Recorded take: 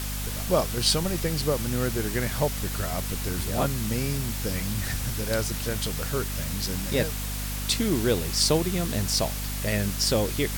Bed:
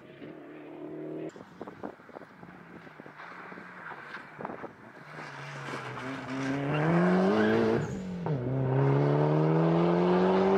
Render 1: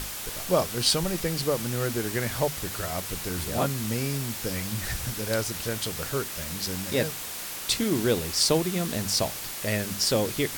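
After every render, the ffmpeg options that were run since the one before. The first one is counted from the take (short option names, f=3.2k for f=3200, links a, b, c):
-af "bandreject=f=50:t=h:w=6,bandreject=f=100:t=h:w=6,bandreject=f=150:t=h:w=6,bandreject=f=200:t=h:w=6,bandreject=f=250:t=h:w=6"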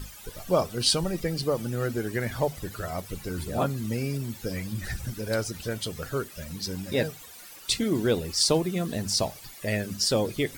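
-af "afftdn=nr=15:nf=-36"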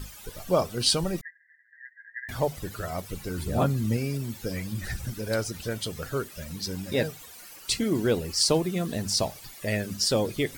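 -filter_complex "[0:a]asettb=1/sr,asplit=3[a][b][c];[a]atrim=end=1.214[d];[b]atrim=start=1.21:end=2.29,asetpts=PTS-STARTPTS,afade=t=in:d=0.004:c=qsin,afade=t=out:st=1.076:d=0.004:c=qsin,asuperpass=centerf=1800:order=12:qfactor=4.5[e];[c]atrim=start=2.286[f];[d][e]acrossfade=d=0.004:c1=hsin:c2=qsin[g];[g][f]acrossfade=d=0.004:c1=qsin:c2=hsin,asettb=1/sr,asplit=3[h][i][j];[h]atrim=end=3.454[k];[i]atrim=start=3.45:end=3.97,asetpts=PTS-STARTPTS,afade=t=in:d=0.004:c=qsin,afade=t=out:st=0.516:d=0.004:c=qsin,lowshelf=f=220:g=7[l];[j]atrim=start=3.966[m];[k][l]acrossfade=d=0.004:c1=hsin:c2=qsin[n];[n][m]acrossfade=d=0.004:c1=qsin:c2=hsin,asettb=1/sr,asplit=3[o][p][q];[o]atrim=end=7.354[r];[p]atrim=start=7.35:end=8.53,asetpts=PTS-STARTPTS,afade=t=in:d=0.004:c=qsin,afade=t=out:st=1.176:d=0.004:c=qsin,bandreject=f=3.6k:w=12[s];[q]atrim=start=8.526[t];[r][s]acrossfade=d=0.004:c1=hsin:c2=qsin[u];[u][t]acrossfade=d=0.004:c1=qsin:c2=hsin"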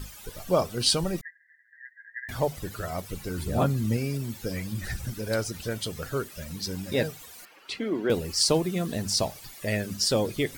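-filter_complex "[0:a]asettb=1/sr,asplit=3[a][b][c];[a]atrim=end=7.454[d];[b]atrim=start=7.45:end=8.1,asetpts=PTS-STARTPTS,afade=t=in:d=0.004:c=qsin,afade=t=out:st=0.646:d=0.004:c=qsin,acrossover=split=230 3500:gain=0.0891 1 0.0891[e][f][g];[e][f][g]amix=inputs=3:normalize=0[h];[c]atrim=start=8.096[i];[d][h]acrossfade=d=0.004:c1=hsin:c2=qsin[j];[j][i]acrossfade=d=0.004:c1=qsin:c2=hsin"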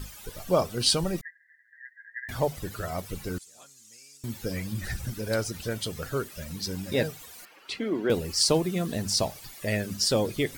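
-filter_complex "[0:a]asettb=1/sr,asplit=3[a][b][c];[a]atrim=end=3.384[d];[b]atrim=start=3.38:end=4.24,asetpts=PTS-STARTPTS,afade=t=in:d=0.004:c=qsin,afade=t=out:st=0.856:d=0.004:c=qsin,bandpass=f=6.9k:t=q:w=2.9[e];[c]atrim=start=4.236[f];[d][e]acrossfade=d=0.004:c1=hsin:c2=qsin[g];[g][f]acrossfade=d=0.004:c1=qsin:c2=hsin"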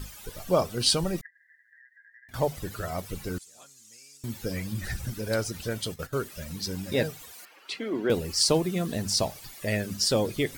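-filter_complex "[0:a]asettb=1/sr,asplit=3[a][b][c];[a]atrim=end=1.264[d];[b]atrim=start=1.26:end=2.34,asetpts=PTS-STARTPTS,afade=t=in:d=0.004:c=qsin,afade=t=out:st=1.076:d=0.004:c=qsin,acompressor=threshold=-52dB:ratio=6:attack=3.2:release=140:knee=1:detection=peak[e];[c]atrim=start=2.336[f];[d][e]acrossfade=d=0.004:c1=hsin:c2=qsin[g];[g][f]acrossfade=d=0.004:c1=qsin:c2=hsin,asplit=3[h][i][j];[h]afade=t=out:st=5.81:d=0.02[k];[i]agate=range=-14dB:threshold=-38dB:ratio=16:release=100:detection=peak,afade=t=in:st=5.81:d=0.02,afade=t=out:st=6.22:d=0.02[l];[j]afade=t=in:st=6.22:d=0.02[m];[k][l][m]amix=inputs=3:normalize=0,asettb=1/sr,asplit=3[n][o][p];[n]atrim=end=7.324[q];[o]atrim=start=7.32:end=7.94,asetpts=PTS-STARTPTS,afade=t=in:d=0.004:c=qsin,afade=t=out:st=0.616:d=0.004:c=qsin,highpass=f=310:p=1[r];[p]atrim=start=7.936[s];[q][r]acrossfade=d=0.004:c1=hsin:c2=qsin[t];[t][s]acrossfade=d=0.004:c1=qsin:c2=hsin"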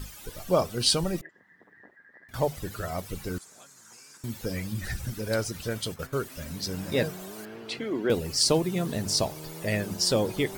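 -filter_complex "[1:a]volume=-17.5dB[a];[0:a][a]amix=inputs=2:normalize=0"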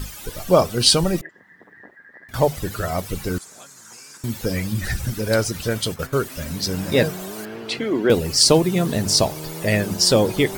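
-af "volume=8.5dB,alimiter=limit=-2dB:level=0:latency=1"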